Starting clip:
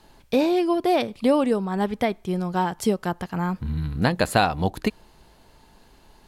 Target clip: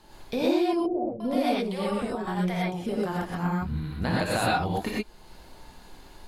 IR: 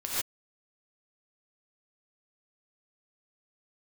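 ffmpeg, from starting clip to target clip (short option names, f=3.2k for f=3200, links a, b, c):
-filter_complex "[0:a]acompressor=threshold=-39dB:ratio=1.5,asettb=1/sr,asplit=3[a][b][c];[a]atrim=end=0.734[d];[b]atrim=start=0.73:end=2.89,asetpts=PTS-STARTPTS,afade=t=in:d=0.004:c=qsin,afade=t=out:st=2.156:d=0.004:c=qsin,acrossover=split=610[e][f];[f]adelay=470[g];[e][g]amix=inputs=2:normalize=0,atrim=end_sample=95256[h];[c]atrim=start=2.886[i];[d][h]acrossfade=d=0.004:c1=hsin:c2=qsin[j];[j][i]acrossfade=d=0.004:c1=qsin:c2=hsin[k];[1:a]atrim=start_sample=2205,afade=t=out:st=0.18:d=0.01,atrim=end_sample=8379[l];[k][l]afir=irnorm=-1:irlink=0"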